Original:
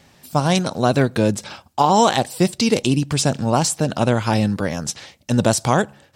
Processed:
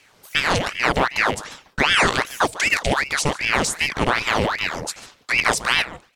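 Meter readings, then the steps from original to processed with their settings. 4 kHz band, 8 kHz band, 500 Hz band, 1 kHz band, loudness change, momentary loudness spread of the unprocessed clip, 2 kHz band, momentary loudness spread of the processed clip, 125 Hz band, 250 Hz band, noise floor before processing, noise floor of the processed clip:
+3.0 dB, −2.5 dB, −5.5 dB, −2.5 dB, −1.0 dB, 8 LU, +10.0 dB, 7 LU, −10.5 dB, −10.0 dB, −55 dBFS, −56 dBFS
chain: loose part that buzzes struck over −24 dBFS, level −15 dBFS
slap from a distant wall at 25 metres, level −17 dB
ring modulator whose carrier an LFO sweeps 1,400 Hz, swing 80%, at 2.6 Hz

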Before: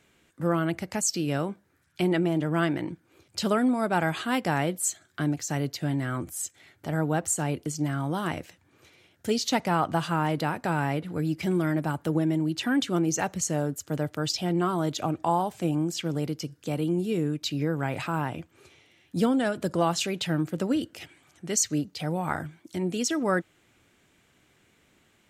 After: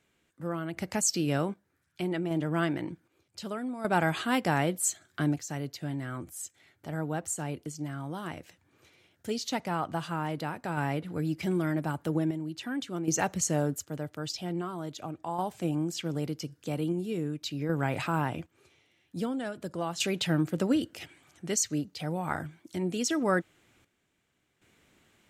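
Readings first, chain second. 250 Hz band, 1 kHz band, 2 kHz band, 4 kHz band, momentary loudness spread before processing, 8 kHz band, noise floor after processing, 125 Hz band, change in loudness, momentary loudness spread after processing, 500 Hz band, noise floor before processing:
−4.0 dB, −4.5 dB, −3.0 dB, −4.0 dB, 8 LU, −2.5 dB, −75 dBFS, −4.0 dB, −4.0 dB, 11 LU, −4.0 dB, −65 dBFS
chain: sample-and-hold tremolo 1.3 Hz, depth 75%

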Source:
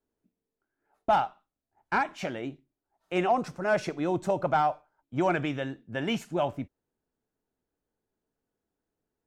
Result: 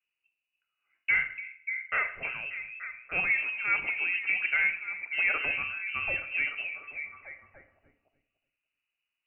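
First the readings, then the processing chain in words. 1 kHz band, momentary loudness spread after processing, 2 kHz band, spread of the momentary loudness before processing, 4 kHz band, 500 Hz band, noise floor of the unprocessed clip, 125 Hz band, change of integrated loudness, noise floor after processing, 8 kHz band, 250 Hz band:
−13.5 dB, 13 LU, +10.0 dB, 10 LU, −3.0 dB, −18.0 dB, below −85 dBFS, below −15 dB, +0.5 dB, below −85 dBFS, below −30 dB, −22.5 dB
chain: echo through a band-pass that steps 293 ms, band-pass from 390 Hz, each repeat 0.7 octaves, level −4 dB
four-comb reverb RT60 0.61 s, combs from 28 ms, DRR 10 dB
voice inversion scrambler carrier 2,900 Hz
level −3 dB

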